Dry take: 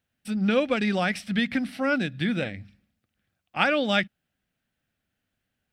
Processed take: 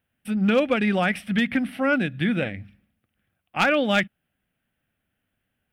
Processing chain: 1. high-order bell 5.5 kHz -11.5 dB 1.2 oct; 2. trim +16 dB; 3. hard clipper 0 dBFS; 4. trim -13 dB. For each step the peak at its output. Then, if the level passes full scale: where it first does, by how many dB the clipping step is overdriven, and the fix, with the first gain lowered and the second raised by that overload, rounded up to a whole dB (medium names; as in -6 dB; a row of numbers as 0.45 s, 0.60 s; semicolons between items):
-8.0 dBFS, +8.0 dBFS, 0.0 dBFS, -13.0 dBFS; step 2, 8.0 dB; step 2 +8 dB, step 4 -5 dB